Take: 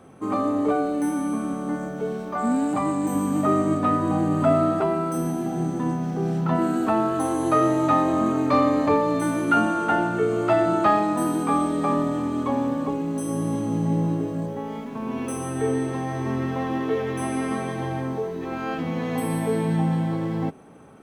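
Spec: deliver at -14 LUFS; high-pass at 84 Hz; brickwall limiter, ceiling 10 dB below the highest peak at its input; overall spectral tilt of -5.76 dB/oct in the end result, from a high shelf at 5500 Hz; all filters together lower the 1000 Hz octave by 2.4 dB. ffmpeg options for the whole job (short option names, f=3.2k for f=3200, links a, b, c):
-af "highpass=84,equalizer=f=1k:t=o:g=-3,highshelf=f=5.5k:g=-6,volume=13dB,alimiter=limit=-5dB:level=0:latency=1"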